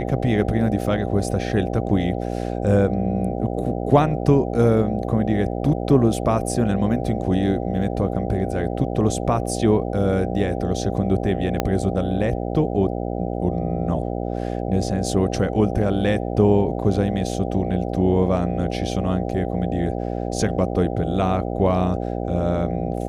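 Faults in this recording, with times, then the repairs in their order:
buzz 60 Hz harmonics 13 -26 dBFS
11.60 s: pop -6 dBFS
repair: de-click; de-hum 60 Hz, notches 13

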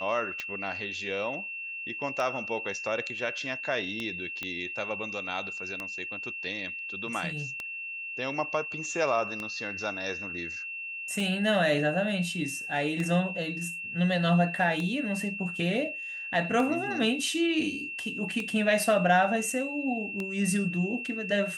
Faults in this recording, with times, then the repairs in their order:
tick 33 1/3 rpm -19 dBFS
whine 2.7 kHz -35 dBFS
4.43 s: pop -19 dBFS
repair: de-click; band-stop 2.7 kHz, Q 30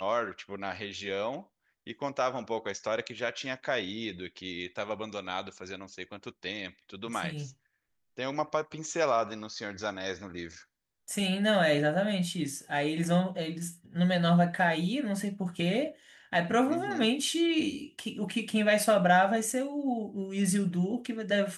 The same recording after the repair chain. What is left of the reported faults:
nothing left

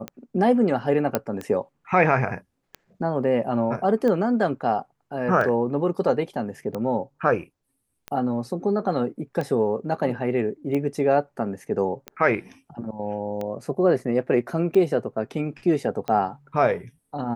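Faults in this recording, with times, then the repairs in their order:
tick 45 rpm -17 dBFS
1.15 s: pop -7 dBFS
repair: de-click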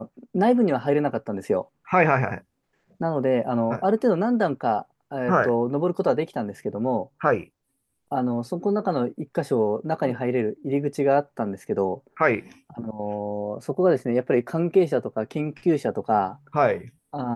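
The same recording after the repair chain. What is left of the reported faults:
nothing left

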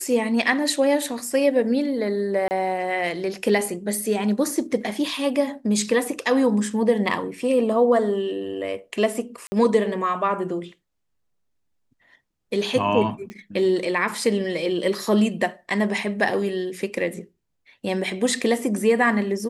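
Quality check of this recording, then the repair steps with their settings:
2.48–2.51 s: dropout 29 ms
9.47–9.52 s: dropout 50 ms
13.30 s: pop -23 dBFS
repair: de-click; interpolate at 2.48 s, 29 ms; interpolate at 9.47 s, 50 ms

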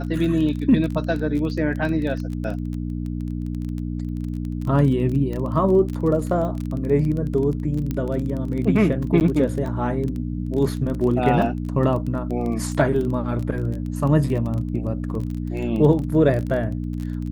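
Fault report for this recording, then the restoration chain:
crackle 21 per s -27 dBFS
hum 60 Hz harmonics 5 -27 dBFS
7.91 s: pop -13 dBFS
9.20–9.21 s: dropout 9.3 ms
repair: de-click; de-hum 60 Hz, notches 5; interpolate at 9.20 s, 9.3 ms

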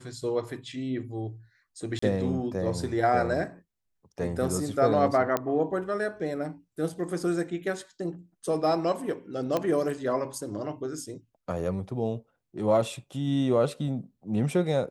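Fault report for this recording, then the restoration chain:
1.99–2.02 s: dropout 34 ms
5.37 s: pop -12 dBFS
9.57 s: pop -14 dBFS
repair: de-click; interpolate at 1.99 s, 34 ms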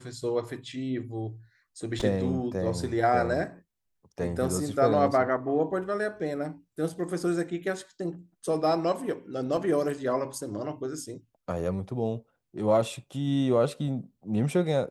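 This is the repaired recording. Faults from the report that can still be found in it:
nothing left

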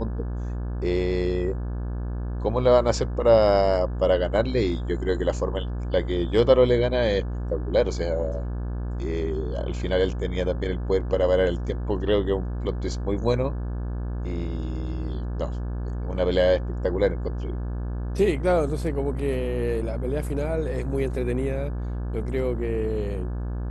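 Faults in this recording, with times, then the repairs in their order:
buzz 60 Hz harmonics 29 -29 dBFS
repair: de-hum 60 Hz, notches 29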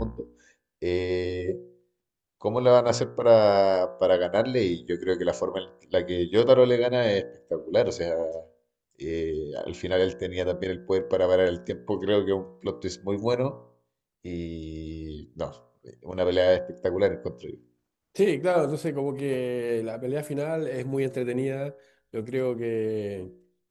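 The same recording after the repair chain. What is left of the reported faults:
nothing left

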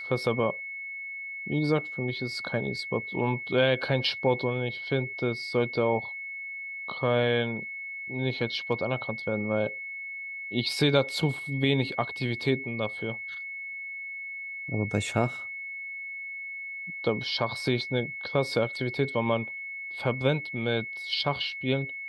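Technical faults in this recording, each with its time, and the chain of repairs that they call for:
whine 2.2 kHz -35 dBFS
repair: band-stop 2.2 kHz, Q 30

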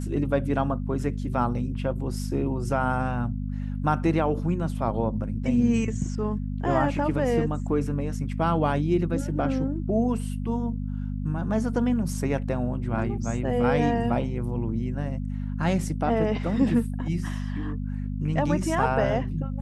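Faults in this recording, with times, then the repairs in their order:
hum 50 Hz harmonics 5 -30 dBFS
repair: de-hum 50 Hz, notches 5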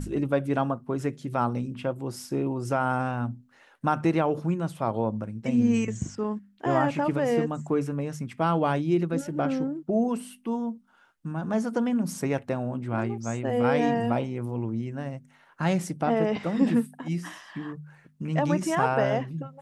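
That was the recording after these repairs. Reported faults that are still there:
nothing left

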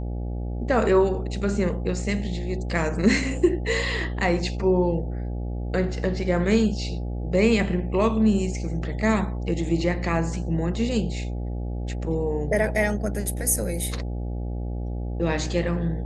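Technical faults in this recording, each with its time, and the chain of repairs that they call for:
buzz 60 Hz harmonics 14 -29 dBFS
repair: de-hum 60 Hz, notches 14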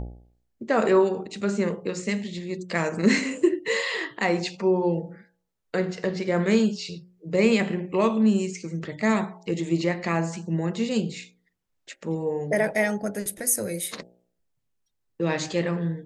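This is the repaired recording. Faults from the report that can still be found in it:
nothing left

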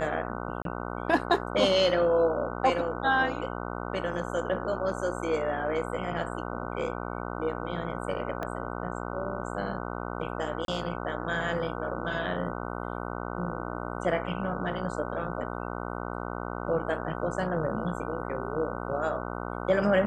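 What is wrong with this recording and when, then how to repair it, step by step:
buzz 60 Hz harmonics 25 -35 dBFS
0.62–0.65 s: dropout 32 ms
8.43 s: pop -20 dBFS
10.65–10.68 s: dropout 32 ms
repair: de-click; de-hum 60 Hz, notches 25; interpolate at 0.62 s, 32 ms; interpolate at 10.65 s, 32 ms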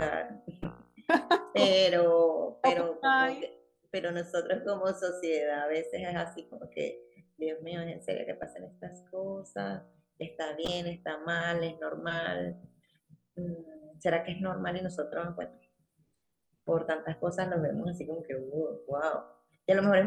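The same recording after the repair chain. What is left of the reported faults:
8.43 s: pop

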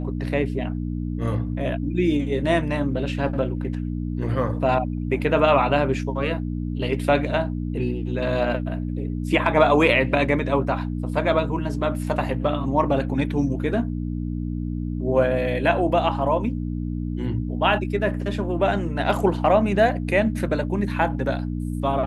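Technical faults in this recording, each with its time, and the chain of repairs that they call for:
hum 60 Hz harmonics 5 -27 dBFS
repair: de-hum 60 Hz, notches 5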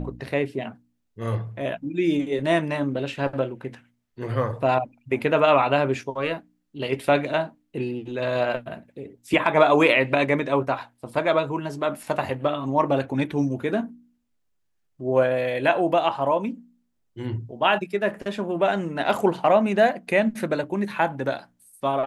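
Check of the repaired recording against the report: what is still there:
nothing left

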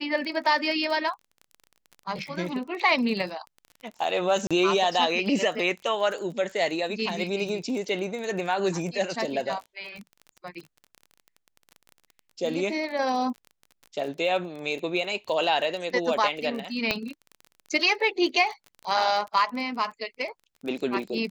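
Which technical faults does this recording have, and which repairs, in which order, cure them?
crackle 27 per s -34 dBFS
4.47–4.51 s: dropout 36 ms
16.91 s: pop -10 dBFS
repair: de-click; interpolate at 4.47 s, 36 ms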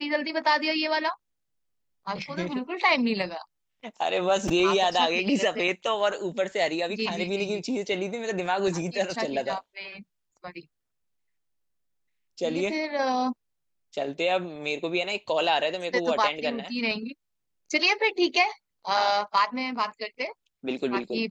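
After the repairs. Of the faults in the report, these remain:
16.91 s: pop

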